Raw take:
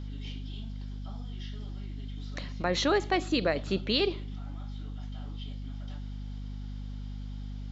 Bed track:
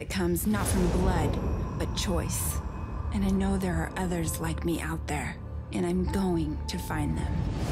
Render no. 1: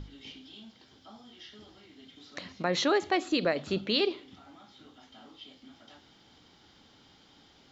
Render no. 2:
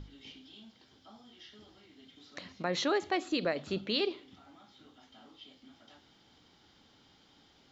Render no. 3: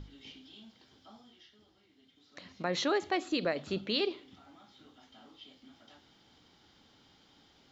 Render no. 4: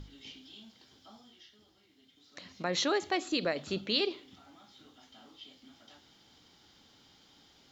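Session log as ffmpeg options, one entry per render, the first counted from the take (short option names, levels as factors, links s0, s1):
-af "bandreject=f=50:t=h:w=6,bandreject=f=100:t=h:w=6,bandreject=f=150:t=h:w=6,bandreject=f=200:t=h:w=6,bandreject=f=250:t=h:w=6"
-af "volume=0.631"
-filter_complex "[0:a]asplit=3[s0][s1][s2];[s0]atrim=end=1.51,asetpts=PTS-STARTPTS,afade=t=out:st=1.14:d=0.37:silence=0.375837[s3];[s1]atrim=start=1.51:end=2.27,asetpts=PTS-STARTPTS,volume=0.376[s4];[s2]atrim=start=2.27,asetpts=PTS-STARTPTS,afade=t=in:d=0.37:silence=0.375837[s5];[s3][s4][s5]concat=n=3:v=0:a=1"
-af "aemphasis=mode=production:type=cd"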